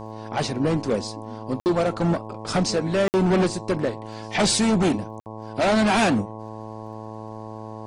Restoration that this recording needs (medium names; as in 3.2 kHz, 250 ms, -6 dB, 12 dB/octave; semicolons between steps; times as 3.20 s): clip repair -12.5 dBFS; de-click; de-hum 109.4 Hz, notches 10; interpolate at 1.60/3.08/5.20 s, 59 ms